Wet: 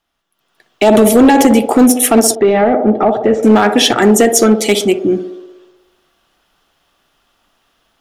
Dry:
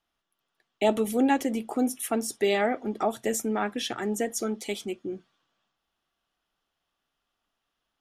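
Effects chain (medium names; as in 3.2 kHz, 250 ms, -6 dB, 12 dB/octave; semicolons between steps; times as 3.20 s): band-passed feedback delay 61 ms, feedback 75%, band-pass 500 Hz, level -9 dB; peak limiter -19 dBFS, peak gain reduction 9 dB; level rider gain up to 12.5 dB; hard clipper -10.5 dBFS, distortion -18 dB; 2.35–3.43 s: tape spacing loss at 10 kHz 45 dB; trim +8.5 dB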